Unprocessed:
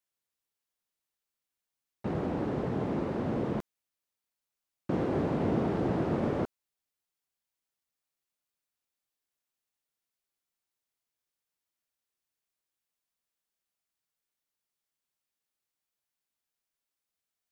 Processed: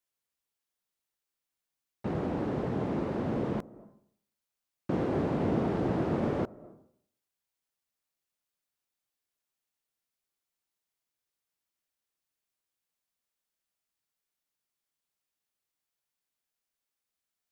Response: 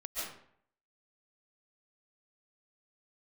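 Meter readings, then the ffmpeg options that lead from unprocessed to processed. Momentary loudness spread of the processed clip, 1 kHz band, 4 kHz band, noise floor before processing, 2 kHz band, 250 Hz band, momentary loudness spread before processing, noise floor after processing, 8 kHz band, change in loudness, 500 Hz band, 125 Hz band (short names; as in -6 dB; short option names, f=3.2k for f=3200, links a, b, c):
9 LU, 0.0 dB, 0.0 dB, under -85 dBFS, 0.0 dB, 0.0 dB, 8 LU, under -85 dBFS, n/a, 0.0 dB, 0.0 dB, 0.0 dB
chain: -filter_complex "[0:a]asplit=2[a][b];[b]lowpass=1.1k[c];[1:a]atrim=start_sample=2205,adelay=88[d];[c][d]afir=irnorm=-1:irlink=0,volume=-20.5dB[e];[a][e]amix=inputs=2:normalize=0"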